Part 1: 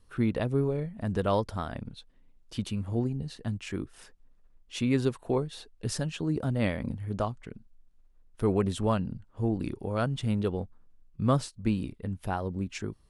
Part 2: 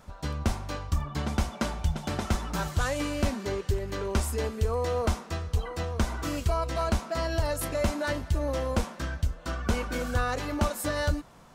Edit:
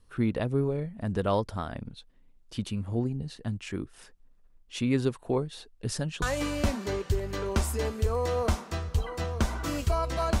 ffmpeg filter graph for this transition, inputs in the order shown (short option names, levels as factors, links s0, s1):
-filter_complex "[0:a]apad=whole_dur=10.4,atrim=end=10.4,atrim=end=6.222[s0];[1:a]atrim=start=2.808:end=6.99[s1];[s0][s1]acrossfade=d=0.004:c1=hsin:c2=hsin"